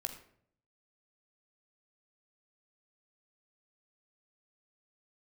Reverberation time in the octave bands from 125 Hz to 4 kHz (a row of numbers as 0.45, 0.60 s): 0.95, 0.80, 0.70, 0.55, 0.50, 0.40 s